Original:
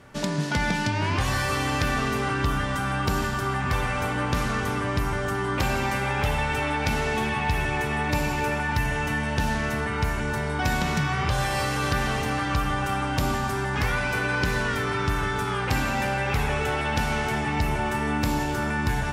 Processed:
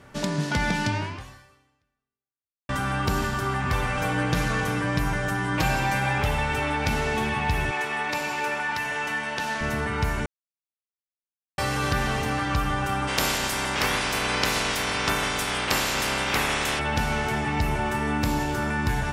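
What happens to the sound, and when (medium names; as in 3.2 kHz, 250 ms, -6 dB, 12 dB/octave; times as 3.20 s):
0.95–2.69 s: fade out exponential
3.97–6.18 s: comb 6.3 ms
7.71–9.61 s: frequency weighting A
10.26–11.58 s: mute
13.07–16.78 s: spectral peaks clipped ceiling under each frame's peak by 22 dB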